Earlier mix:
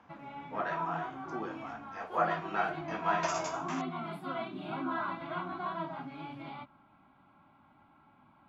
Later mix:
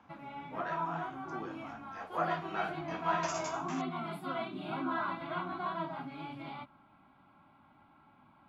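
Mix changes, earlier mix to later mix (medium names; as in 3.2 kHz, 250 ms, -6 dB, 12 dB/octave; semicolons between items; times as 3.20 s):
speech -4.5 dB; master: add treble shelf 5.9 kHz +6.5 dB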